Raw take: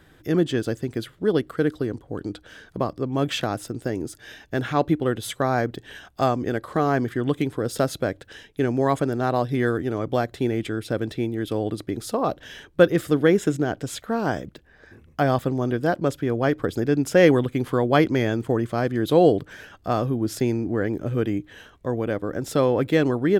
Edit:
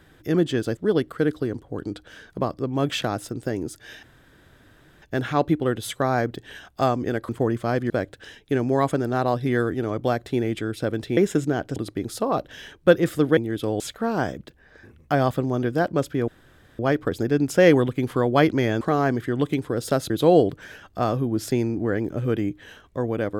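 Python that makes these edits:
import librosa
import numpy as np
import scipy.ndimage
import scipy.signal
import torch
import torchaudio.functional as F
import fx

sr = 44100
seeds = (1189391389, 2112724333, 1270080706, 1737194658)

y = fx.edit(x, sr, fx.cut(start_s=0.77, length_s=0.39),
    fx.insert_room_tone(at_s=4.42, length_s=0.99),
    fx.swap(start_s=6.69, length_s=1.29, other_s=18.38, other_length_s=0.61),
    fx.swap(start_s=11.25, length_s=0.43, other_s=13.29, other_length_s=0.59),
    fx.insert_room_tone(at_s=16.36, length_s=0.51), tone=tone)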